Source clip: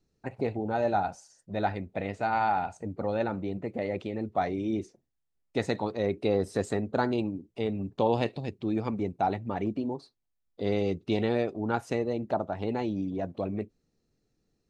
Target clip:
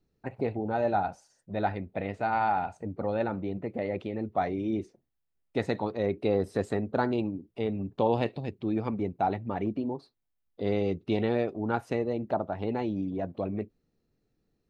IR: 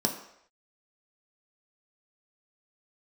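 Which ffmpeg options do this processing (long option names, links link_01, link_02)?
-af "equalizer=frequency=7000:width_type=o:width=1.3:gain=-9"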